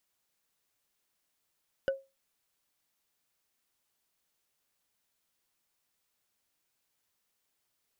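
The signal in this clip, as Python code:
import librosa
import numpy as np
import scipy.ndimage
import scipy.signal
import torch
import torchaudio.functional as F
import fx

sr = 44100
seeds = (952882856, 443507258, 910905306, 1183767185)

y = fx.strike_wood(sr, length_s=0.45, level_db=-22.5, body='bar', hz=541.0, decay_s=0.25, tilt_db=7.5, modes=5)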